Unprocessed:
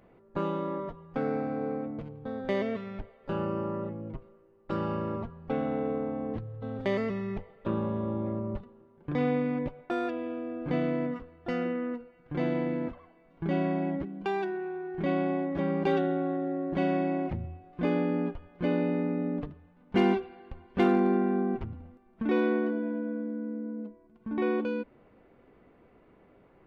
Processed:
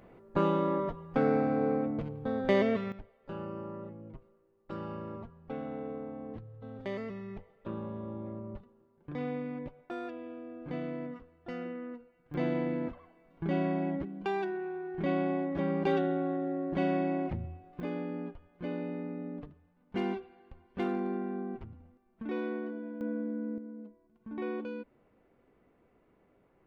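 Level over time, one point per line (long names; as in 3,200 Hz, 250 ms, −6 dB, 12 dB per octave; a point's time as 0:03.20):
+3.5 dB
from 0:02.92 −8.5 dB
from 0:12.34 −2 dB
from 0:17.80 −9 dB
from 0:23.01 −1 dB
from 0:23.58 −8 dB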